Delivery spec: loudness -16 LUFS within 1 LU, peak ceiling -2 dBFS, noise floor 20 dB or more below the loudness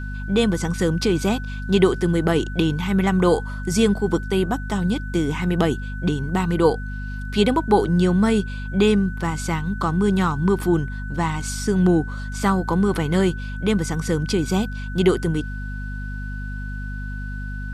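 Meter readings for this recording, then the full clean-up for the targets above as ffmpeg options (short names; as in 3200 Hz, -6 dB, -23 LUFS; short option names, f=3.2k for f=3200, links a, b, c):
hum 50 Hz; harmonics up to 250 Hz; hum level -27 dBFS; steady tone 1500 Hz; tone level -36 dBFS; loudness -22.0 LUFS; peak -3.0 dBFS; loudness target -16.0 LUFS
-> -af "bandreject=f=50:t=h:w=4,bandreject=f=100:t=h:w=4,bandreject=f=150:t=h:w=4,bandreject=f=200:t=h:w=4,bandreject=f=250:t=h:w=4"
-af "bandreject=f=1.5k:w=30"
-af "volume=6dB,alimiter=limit=-2dB:level=0:latency=1"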